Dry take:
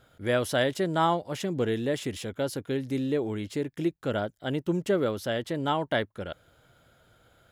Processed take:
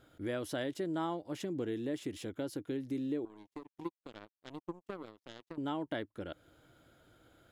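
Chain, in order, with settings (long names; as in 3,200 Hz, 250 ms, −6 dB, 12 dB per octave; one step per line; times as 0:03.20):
parametric band 310 Hz +11.5 dB 0.46 octaves
downward compressor 2 to 1, threshold −36 dBFS, peak gain reduction 12 dB
0:03.25–0:05.58: power curve on the samples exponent 3
level −4.5 dB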